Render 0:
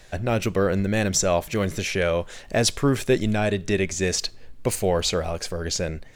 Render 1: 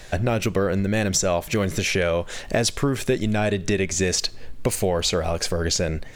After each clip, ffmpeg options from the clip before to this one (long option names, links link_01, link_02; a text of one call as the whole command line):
ffmpeg -i in.wav -af "acompressor=threshold=-27dB:ratio=4,volume=7.5dB" out.wav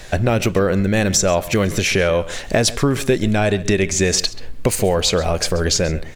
ffmpeg -i in.wav -filter_complex "[0:a]asplit=2[link_01][link_02];[link_02]adelay=134.1,volume=-17dB,highshelf=frequency=4000:gain=-3.02[link_03];[link_01][link_03]amix=inputs=2:normalize=0,volume=5dB" out.wav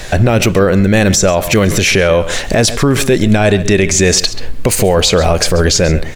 ffmpeg -i in.wav -af "alimiter=level_in=11.5dB:limit=-1dB:release=50:level=0:latency=1,volume=-1dB" out.wav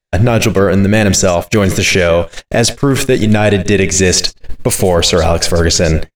ffmpeg -i in.wav -af "agate=range=-56dB:threshold=-13dB:ratio=16:detection=peak" out.wav